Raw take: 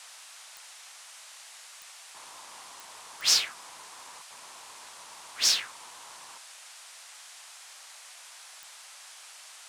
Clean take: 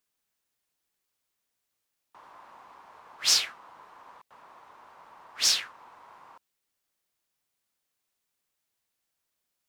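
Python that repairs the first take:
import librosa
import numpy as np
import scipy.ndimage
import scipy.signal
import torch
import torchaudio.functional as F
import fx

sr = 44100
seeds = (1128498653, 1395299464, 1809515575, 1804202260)

y = fx.fix_declick_ar(x, sr, threshold=10.0)
y = fx.noise_reduce(y, sr, print_start_s=7.73, print_end_s=8.23, reduce_db=30.0)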